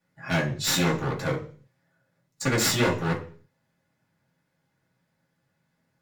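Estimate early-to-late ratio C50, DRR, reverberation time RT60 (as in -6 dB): 11.0 dB, -6.0 dB, 0.40 s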